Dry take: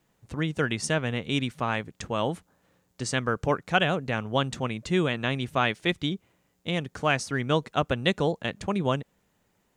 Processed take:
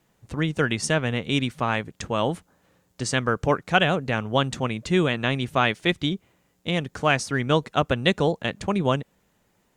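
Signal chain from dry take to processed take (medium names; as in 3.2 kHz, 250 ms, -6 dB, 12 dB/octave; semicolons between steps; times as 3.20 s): trim +3.5 dB; Opus 64 kbps 48 kHz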